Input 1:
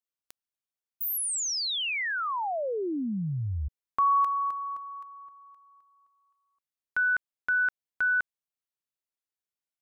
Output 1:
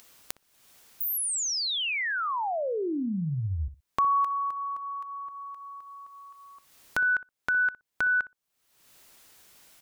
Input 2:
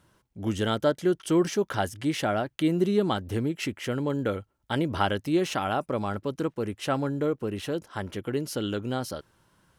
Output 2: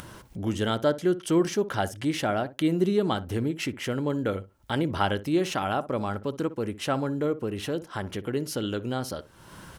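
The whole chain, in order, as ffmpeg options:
-filter_complex "[0:a]acompressor=mode=upward:threshold=-27dB:ratio=2.5:attack=4.2:release=362:knee=2.83:detection=peak,asplit=2[a][b];[b]adelay=61,lowpass=f=940:p=1,volume=-13.5dB,asplit=2[c][d];[d]adelay=61,lowpass=f=940:p=1,volume=0.16[e];[a][c][e]amix=inputs=3:normalize=0"

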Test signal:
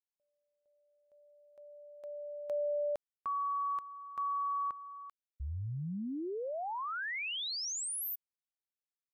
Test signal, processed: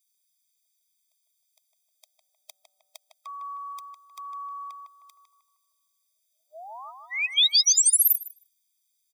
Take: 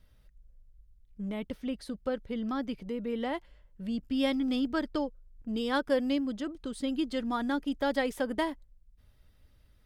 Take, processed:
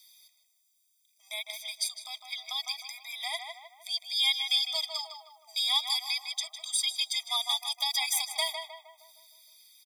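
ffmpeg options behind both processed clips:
-filter_complex "[0:a]acrossover=split=2700[a][b];[b]alimiter=level_in=15dB:limit=-24dB:level=0:latency=1:release=53,volume=-15dB[c];[a][c]amix=inputs=2:normalize=0,aexciter=amount=12:drive=8.4:freq=2.5k,asplit=2[d][e];[e]adelay=155,lowpass=f=2k:p=1,volume=-4dB,asplit=2[f][g];[g]adelay=155,lowpass=f=2k:p=1,volume=0.51,asplit=2[h][i];[i]adelay=155,lowpass=f=2k:p=1,volume=0.51,asplit=2[j][k];[k]adelay=155,lowpass=f=2k:p=1,volume=0.51,asplit=2[l][m];[m]adelay=155,lowpass=f=2k:p=1,volume=0.51,asplit=2[n][o];[o]adelay=155,lowpass=f=2k:p=1,volume=0.51,asplit=2[p][q];[q]adelay=155,lowpass=f=2k:p=1,volume=0.51[r];[d][f][h][j][l][n][p][r]amix=inputs=8:normalize=0,afftfilt=real='re*eq(mod(floor(b*sr/1024/640),2),1)':imag='im*eq(mod(floor(b*sr/1024/640),2),1)':win_size=1024:overlap=0.75,volume=-3.5dB"

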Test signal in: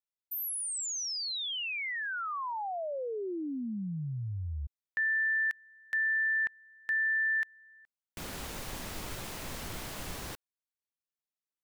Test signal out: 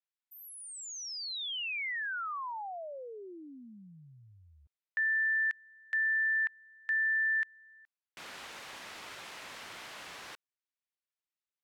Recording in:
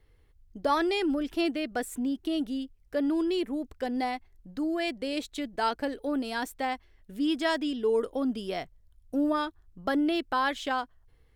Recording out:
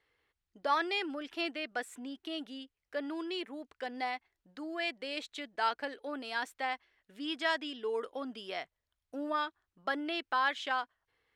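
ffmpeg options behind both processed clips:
-af "bandpass=f=2k:t=q:w=0.61:csg=0,acontrast=90,volume=-7.5dB"

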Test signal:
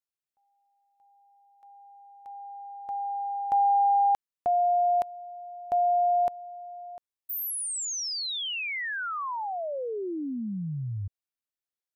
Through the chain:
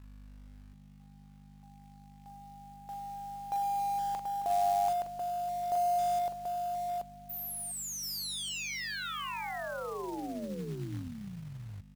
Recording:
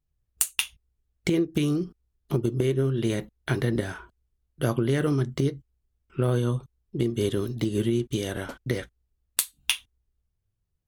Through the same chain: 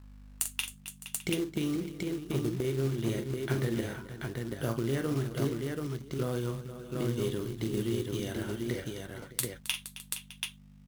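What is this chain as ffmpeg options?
-af "aeval=exprs='val(0)+0.00794*(sin(2*PI*50*n/s)+sin(2*PI*2*50*n/s)/2+sin(2*PI*3*50*n/s)/3+sin(2*PI*4*50*n/s)/4+sin(2*PI*5*50*n/s)/5)':c=same,aecho=1:1:44|267|468|610|734:0.398|0.188|0.237|0.133|0.668,acrusher=bits=4:mode=log:mix=0:aa=0.000001,volume=-8dB"

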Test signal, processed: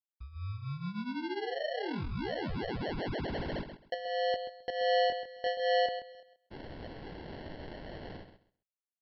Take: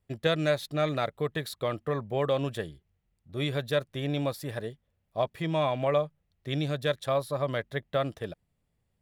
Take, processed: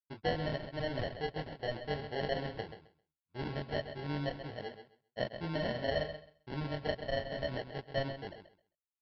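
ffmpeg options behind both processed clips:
-filter_complex "[0:a]agate=range=-33dB:threshold=-37dB:ratio=3:detection=peak,lowshelf=f=170:g=-4.5,flanger=delay=20:depth=7.2:speed=0.23,acrusher=samples=36:mix=1:aa=0.000001,asplit=2[a][b];[b]aecho=0:1:132|264|396:0.316|0.0569|0.0102[c];[a][c]amix=inputs=2:normalize=0,aresample=11025,aresample=44100,volume=-4dB"

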